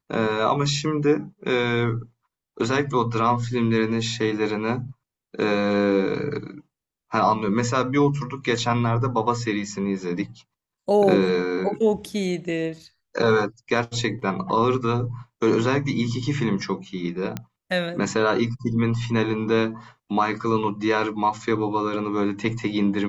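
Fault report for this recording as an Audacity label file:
17.370000	17.370000	click −14 dBFS

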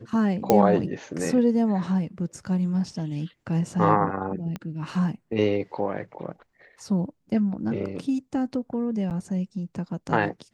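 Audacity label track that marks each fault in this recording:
0.500000	0.500000	click −6 dBFS
4.560000	4.560000	click −19 dBFS
9.100000	9.110000	drop-out 8.2 ms

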